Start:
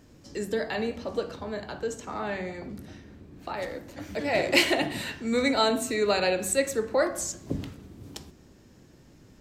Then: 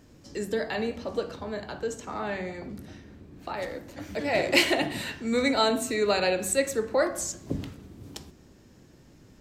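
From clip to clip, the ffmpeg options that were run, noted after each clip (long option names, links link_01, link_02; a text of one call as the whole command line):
ffmpeg -i in.wav -af anull out.wav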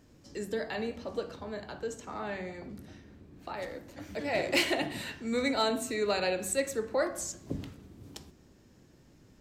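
ffmpeg -i in.wav -af "asoftclip=type=hard:threshold=-14dB,volume=-5dB" out.wav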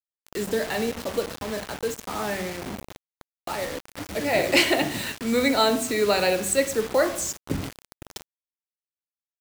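ffmpeg -i in.wav -af "acrusher=bits=6:mix=0:aa=0.000001,volume=8dB" out.wav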